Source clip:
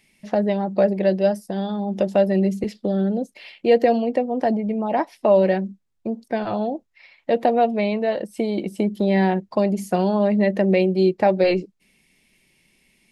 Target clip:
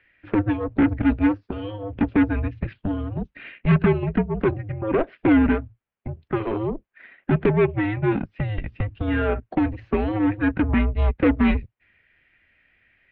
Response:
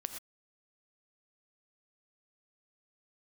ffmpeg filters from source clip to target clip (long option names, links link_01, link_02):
-af "highpass=frequency=160:poles=1,aeval=exprs='0.531*(cos(1*acos(clip(val(0)/0.531,-1,1)))-cos(1*PI/2))+0.075*(cos(3*acos(clip(val(0)/0.531,-1,1)))-cos(3*PI/2))+0.0841*(cos(5*acos(clip(val(0)/0.531,-1,1)))-cos(5*PI/2))+0.0531*(cos(8*acos(clip(val(0)/0.531,-1,1)))-cos(8*PI/2))':channel_layout=same,highpass=frequency=300:width_type=q:width=0.5412,highpass=frequency=300:width_type=q:width=1.307,lowpass=frequency=3100:width_type=q:width=0.5176,lowpass=frequency=3100:width_type=q:width=0.7071,lowpass=frequency=3100:width_type=q:width=1.932,afreqshift=-310"